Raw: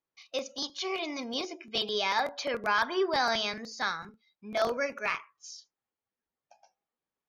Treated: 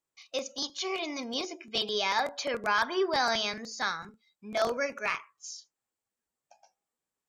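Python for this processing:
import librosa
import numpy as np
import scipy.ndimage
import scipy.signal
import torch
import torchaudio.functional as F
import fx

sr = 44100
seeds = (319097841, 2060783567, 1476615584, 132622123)

y = fx.peak_eq(x, sr, hz=7700.0, db=11.0, octaves=0.41)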